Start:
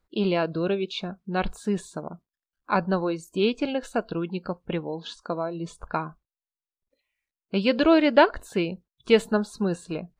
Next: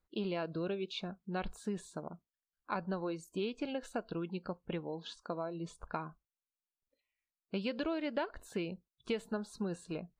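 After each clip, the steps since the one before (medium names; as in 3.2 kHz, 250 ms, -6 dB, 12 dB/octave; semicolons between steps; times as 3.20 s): compression 6:1, threshold -24 dBFS, peak gain reduction 12 dB; trim -8.5 dB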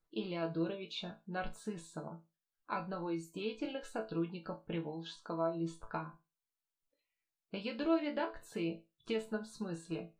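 chord resonator A2 sus4, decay 0.25 s; trim +11.5 dB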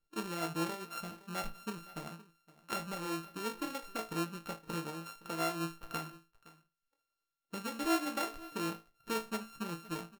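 sorted samples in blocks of 32 samples; delay 516 ms -19.5 dB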